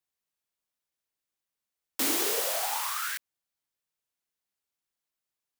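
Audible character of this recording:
background noise floor −89 dBFS
spectral slope 0.0 dB per octave

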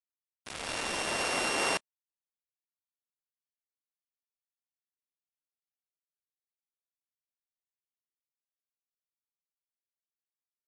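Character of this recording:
a buzz of ramps at a fixed pitch in blocks of 16 samples
tremolo saw up 0.5 Hz, depth 100%
a quantiser's noise floor 6 bits, dither none
MP3

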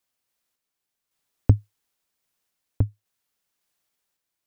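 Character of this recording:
sample-and-hold tremolo 3.6 Hz

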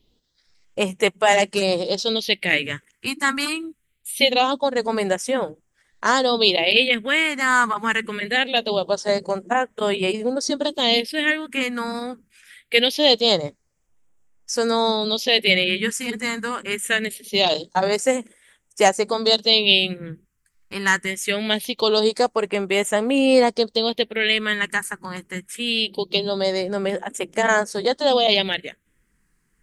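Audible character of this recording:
phaser sweep stages 4, 0.23 Hz, lowest notch 580–4,200 Hz

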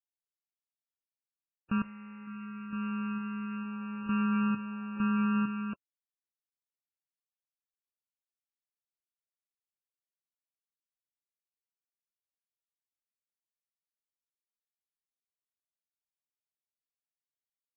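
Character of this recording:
a buzz of ramps at a fixed pitch in blocks of 32 samples
sample-and-hold tremolo 2.2 Hz, depth 90%
a quantiser's noise floor 10 bits, dither none
MP3

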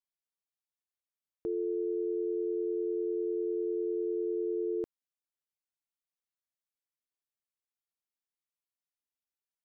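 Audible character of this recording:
background noise floor −95 dBFS
spectral slope +1.0 dB per octave

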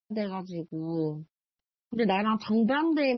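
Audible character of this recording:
phaser sweep stages 12, 2 Hz, lowest notch 530–1,300 Hz
a quantiser's noise floor 12 bits, dither none
MP3

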